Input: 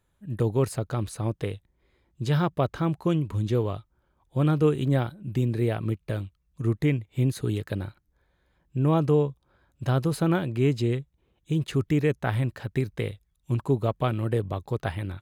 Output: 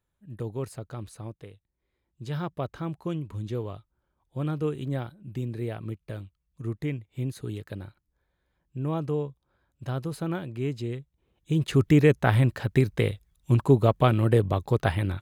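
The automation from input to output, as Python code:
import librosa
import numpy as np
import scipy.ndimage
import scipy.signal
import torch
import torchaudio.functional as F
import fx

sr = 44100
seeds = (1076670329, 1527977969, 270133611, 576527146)

y = fx.gain(x, sr, db=fx.line((1.19, -9.0), (1.51, -16.0), (2.48, -7.0), (10.95, -7.0), (11.86, 5.0)))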